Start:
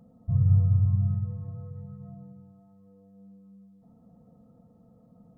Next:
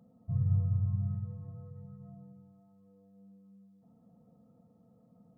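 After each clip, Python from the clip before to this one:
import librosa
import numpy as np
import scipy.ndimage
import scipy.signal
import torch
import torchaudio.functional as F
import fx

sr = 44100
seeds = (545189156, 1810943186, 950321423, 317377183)

y = scipy.signal.sosfilt(scipy.signal.butter(2, 92.0, 'highpass', fs=sr, output='sos'), x)
y = y * 10.0 ** (-5.5 / 20.0)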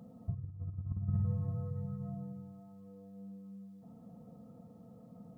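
y = fx.over_compress(x, sr, threshold_db=-36.0, ratio=-0.5)
y = y * 10.0 ** (2.5 / 20.0)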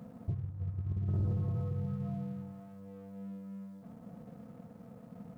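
y = fx.leveller(x, sr, passes=2)
y = y * 10.0 ** (-3.0 / 20.0)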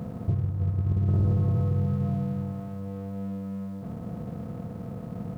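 y = fx.bin_compress(x, sr, power=0.6)
y = y * 10.0 ** (7.5 / 20.0)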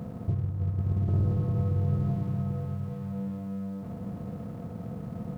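y = x + 10.0 ** (-5.5 / 20.0) * np.pad(x, (int(791 * sr / 1000.0), 0))[:len(x)]
y = y * 10.0 ** (-2.5 / 20.0)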